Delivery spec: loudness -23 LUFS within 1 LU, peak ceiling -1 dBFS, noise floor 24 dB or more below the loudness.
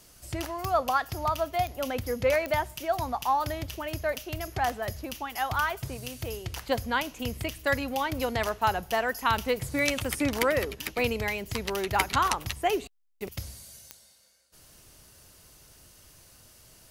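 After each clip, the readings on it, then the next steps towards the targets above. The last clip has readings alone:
clicks found 5; loudness -29.0 LUFS; peak level -7.5 dBFS; loudness target -23.0 LUFS
-> de-click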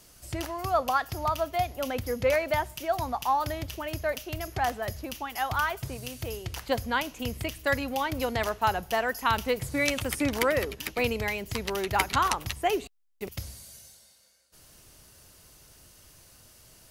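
clicks found 0; loudness -29.0 LUFS; peak level -7.5 dBFS; loudness target -23.0 LUFS
-> trim +6 dB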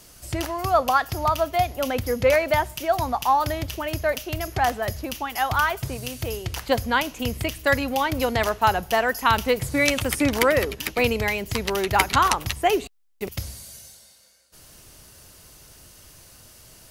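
loudness -23.0 LUFS; peak level -1.5 dBFS; noise floor -51 dBFS

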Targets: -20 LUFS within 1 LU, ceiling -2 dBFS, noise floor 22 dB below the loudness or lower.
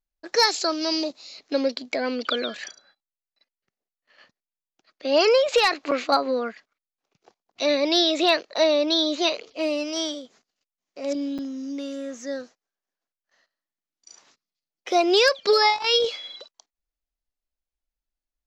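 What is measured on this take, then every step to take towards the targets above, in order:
dropouts 2; longest dropout 6.8 ms; loudness -23.0 LUFS; peak level -8.5 dBFS; loudness target -20.0 LUFS
-> interpolate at 5.91/11.38 s, 6.8 ms; trim +3 dB

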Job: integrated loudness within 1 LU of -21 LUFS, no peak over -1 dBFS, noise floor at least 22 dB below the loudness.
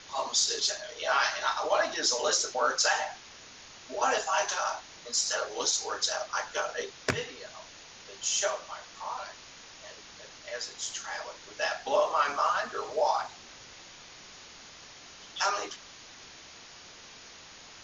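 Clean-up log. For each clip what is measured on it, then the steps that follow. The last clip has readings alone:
noise floor -50 dBFS; noise floor target -52 dBFS; loudness -29.5 LUFS; peak level -10.5 dBFS; loudness target -21.0 LUFS
-> noise reduction 6 dB, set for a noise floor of -50 dBFS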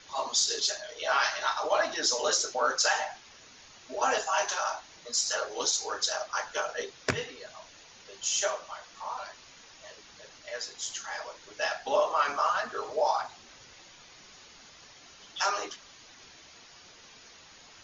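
noise floor -54 dBFS; loudness -29.5 LUFS; peak level -10.5 dBFS; loudness target -21.0 LUFS
-> trim +8.5 dB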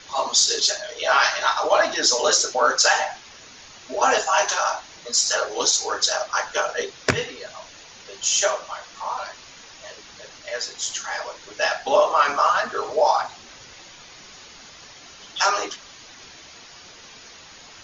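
loudness -21.0 LUFS; peak level -2.0 dBFS; noise floor -45 dBFS

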